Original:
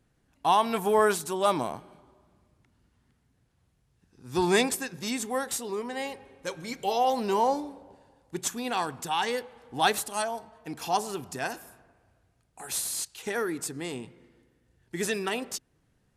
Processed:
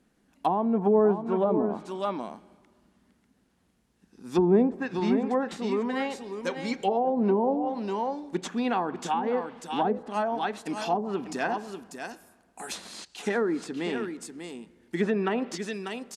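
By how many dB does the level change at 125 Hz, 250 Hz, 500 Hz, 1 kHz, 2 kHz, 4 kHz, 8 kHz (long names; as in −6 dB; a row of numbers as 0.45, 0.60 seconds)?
+5.0, +7.0, +3.0, −1.5, −2.5, −6.0, −11.0 decibels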